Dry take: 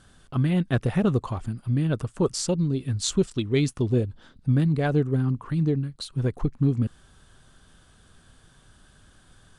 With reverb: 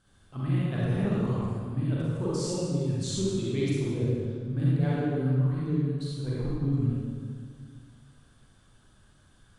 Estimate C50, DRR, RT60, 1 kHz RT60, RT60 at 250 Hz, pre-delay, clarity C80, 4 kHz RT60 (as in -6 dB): -5.5 dB, -8.0 dB, 1.9 s, 1.8 s, 2.3 s, 34 ms, -2.5 dB, 1.4 s